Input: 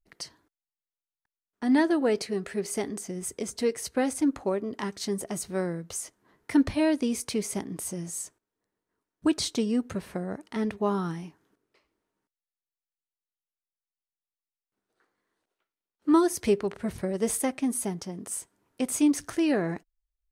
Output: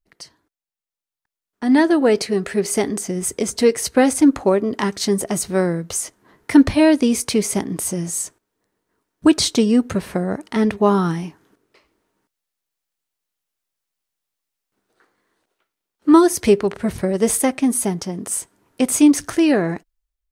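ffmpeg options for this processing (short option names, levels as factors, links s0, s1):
-af "dynaudnorm=f=670:g=5:m=4.47"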